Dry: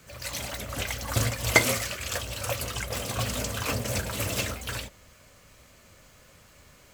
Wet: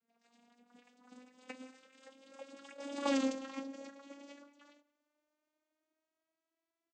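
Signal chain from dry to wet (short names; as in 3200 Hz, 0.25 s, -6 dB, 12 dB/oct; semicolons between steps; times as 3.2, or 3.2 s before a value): vocoder on a gliding note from A3, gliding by +8 st; Doppler pass-by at 3.14, 15 m/s, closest 1 m; speakerphone echo 0.18 s, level -24 dB; gain +1.5 dB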